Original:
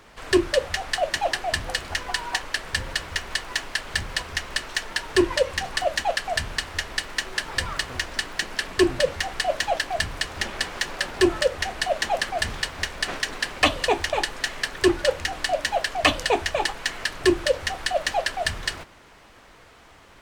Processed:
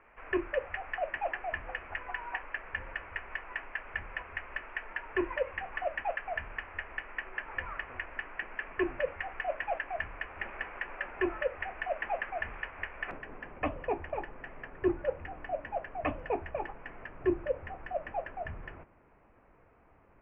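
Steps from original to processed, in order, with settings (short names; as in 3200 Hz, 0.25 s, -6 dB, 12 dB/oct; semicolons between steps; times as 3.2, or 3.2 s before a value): elliptic low-pass 2500 Hz, stop band 40 dB; bell 140 Hz -10 dB 2.3 oct, from 13.11 s 2300 Hz; gain -7.5 dB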